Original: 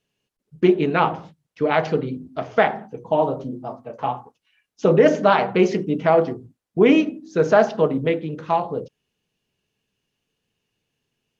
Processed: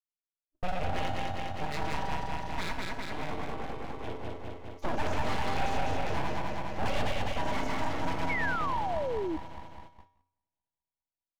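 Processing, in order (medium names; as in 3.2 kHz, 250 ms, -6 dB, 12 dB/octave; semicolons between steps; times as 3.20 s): backward echo that repeats 102 ms, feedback 82%, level -1 dB; FFT band-reject 600–1500 Hz; gate -39 dBFS, range -34 dB; 4.06–4.89 s: bass shelf 220 Hz +7.5 dB; in parallel at +1 dB: compression, threshold -25 dBFS, peak gain reduction 17 dB; on the sum: full-wave rectifier; feedback comb 88 Hz, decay 0.56 s, harmonics odd, mix 70%; saturation -15.5 dBFS, distortion -17 dB; on a send: delay 170 ms -20 dB; 8.29–9.37 s: on the sum: painted sound fall 300–2300 Hz -28 dBFS; trim -4.5 dB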